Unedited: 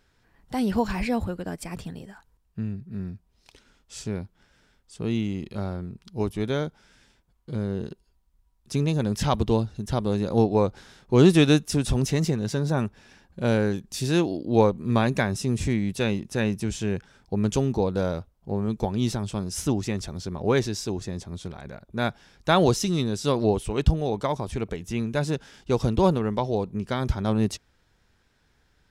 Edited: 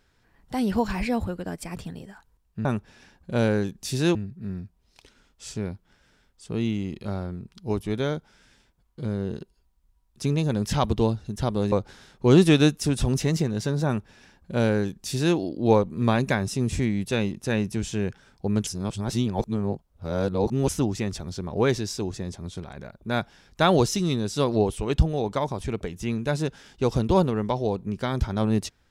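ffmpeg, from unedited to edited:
ffmpeg -i in.wav -filter_complex "[0:a]asplit=6[link_01][link_02][link_03][link_04][link_05][link_06];[link_01]atrim=end=2.652[link_07];[link_02]atrim=start=12.738:end=14.242[link_08];[link_03]atrim=start=2.648:end=10.222[link_09];[link_04]atrim=start=10.598:end=17.552[link_10];[link_05]atrim=start=17.548:end=19.572,asetpts=PTS-STARTPTS,areverse[link_11];[link_06]atrim=start=19.568[link_12];[link_07][link_08]acrossfade=duration=0.004:curve1=hsin:curve2=hsin[link_13];[link_13][link_09]acrossfade=duration=0.004:curve1=hsin:curve2=hsin[link_14];[link_14][link_10]acrossfade=duration=0.004:curve1=hsin:curve2=hsin[link_15];[link_15][link_11]acrossfade=duration=0.004:curve1=hsin:curve2=hsin[link_16];[link_16][link_12]acrossfade=duration=0.004:curve1=hsin:curve2=hsin" out.wav

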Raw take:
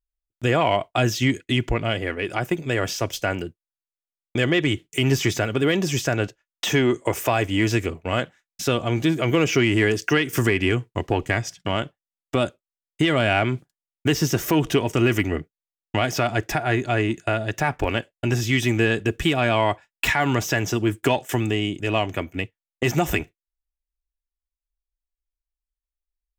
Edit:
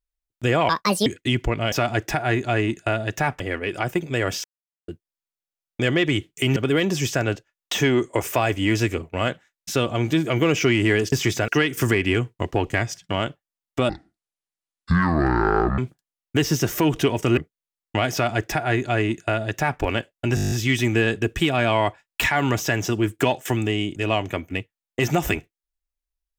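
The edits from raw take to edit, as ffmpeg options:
ffmpeg -i in.wav -filter_complex "[0:a]asplit=21[link_01][link_02][link_03][link_04][link_05][link_06][link_07][link_08][link_09][link_10][link_11][link_12][link_13][link_14][link_15][link_16][link_17][link_18][link_19][link_20][link_21];[link_01]atrim=end=0.694[link_22];[link_02]atrim=start=0.69:end=1.3,asetpts=PTS-STARTPTS,asetrate=72324,aresample=44100,atrim=end_sample=16403,asetpts=PTS-STARTPTS[link_23];[link_03]atrim=start=1.296:end=1.962[link_24];[link_04]atrim=start=16.128:end=17.812[link_25];[link_05]atrim=start=1.958:end=3,asetpts=PTS-STARTPTS,afade=type=out:start_time=1.038:duration=0.004:curve=hsin[link_26];[link_06]atrim=start=3:end=3.44,asetpts=PTS-STARTPTS,volume=0[link_27];[link_07]atrim=start=3.44:end=5.122,asetpts=PTS-STARTPTS,afade=type=in:duration=0.004:curve=hsin[link_28];[link_08]atrim=start=5.478:end=10.042[link_29];[link_09]atrim=start=5.118:end=5.482[link_30];[link_10]atrim=start=10.038:end=12.454[link_31];[link_11]atrim=start=12.45:end=13.49,asetpts=PTS-STARTPTS,asetrate=24255,aresample=44100,atrim=end_sample=83389,asetpts=PTS-STARTPTS[link_32];[link_12]atrim=start=13.486:end=15.082[link_33];[link_13]atrim=start=15.368:end=18.372[link_34];[link_14]atrim=start=18.348:end=18.372[link_35];[link_15]atrim=start=18.348:end=18.372[link_36];[link_16]atrim=start=18.348:end=18.372[link_37];[link_17]atrim=start=18.348:end=18.372[link_38];[link_18]atrim=start=18.348:end=18.372[link_39];[link_19]atrim=start=18.348:end=18.372[link_40];[link_20]atrim=start=18.348:end=18.372[link_41];[link_21]atrim=start=18.348[link_42];[link_22][link_23]acrossfade=duration=0.004:curve1=hsin:curve2=hsin[link_43];[link_43][link_24]acrossfade=duration=0.004:curve1=hsin:curve2=hsin[link_44];[link_44][link_25]acrossfade=duration=0.004:curve1=hsin:curve2=hsin[link_45];[link_26][link_27][link_28]concat=n=3:v=0:a=1[link_46];[link_45][link_46]acrossfade=duration=0.004:curve1=hsin:curve2=hsin[link_47];[link_47][link_29]acrossfade=duration=0.004:curve1=hsin:curve2=hsin[link_48];[link_48][link_30]acrossfade=duration=0.004:curve1=hsin:curve2=hsin[link_49];[link_49][link_31]acrossfade=duration=0.004:curve1=hsin:curve2=hsin[link_50];[link_50][link_32]acrossfade=duration=0.004:curve1=hsin:curve2=hsin[link_51];[link_51][link_33]acrossfade=duration=0.004:curve1=hsin:curve2=hsin[link_52];[link_52][link_34]acrossfade=duration=0.004:curve1=hsin:curve2=hsin[link_53];[link_53][link_35]acrossfade=duration=0.004:curve1=hsin:curve2=hsin[link_54];[link_54][link_36]acrossfade=duration=0.004:curve1=hsin:curve2=hsin[link_55];[link_55][link_37]acrossfade=duration=0.004:curve1=hsin:curve2=hsin[link_56];[link_56][link_38]acrossfade=duration=0.004:curve1=hsin:curve2=hsin[link_57];[link_57][link_39]acrossfade=duration=0.004:curve1=hsin:curve2=hsin[link_58];[link_58][link_40]acrossfade=duration=0.004:curve1=hsin:curve2=hsin[link_59];[link_59][link_41]acrossfade=duration=0.004:curve1=hsin:curve2=hsin[link_60];[link_60][link_42]acrossfade=duration=0.004:curve1=hsin:curve2=hsin" out.wav

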